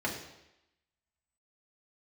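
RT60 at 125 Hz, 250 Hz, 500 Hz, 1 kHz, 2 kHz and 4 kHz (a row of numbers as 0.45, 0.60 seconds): 0.80, 0.85, 0.90, 0.90, 0.90, 0.90 seconds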